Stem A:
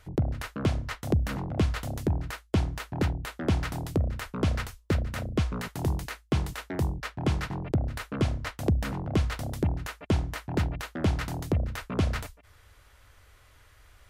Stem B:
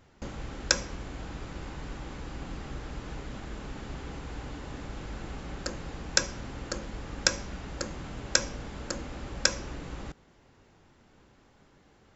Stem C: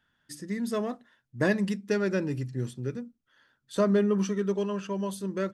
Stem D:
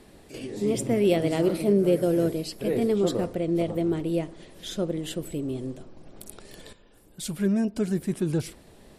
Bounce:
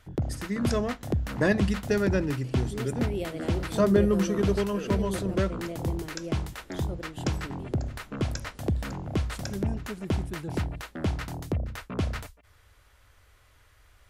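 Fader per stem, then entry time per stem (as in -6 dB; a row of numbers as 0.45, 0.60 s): -2.5, -15.5, +1.5, -11.5 dB; 0.00, 0.00, 0.00, 2.10 s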